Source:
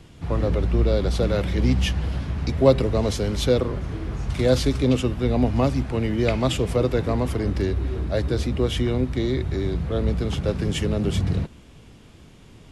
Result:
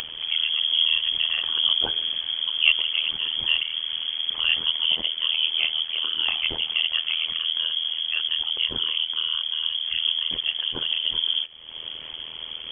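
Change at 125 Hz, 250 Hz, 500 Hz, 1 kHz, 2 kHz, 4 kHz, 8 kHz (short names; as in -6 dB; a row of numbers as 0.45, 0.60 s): under -30 dB, -25.5 dB, -24.5 dB, -9.5 dB, +7.5 dB, +16.5 dB, under -25 dB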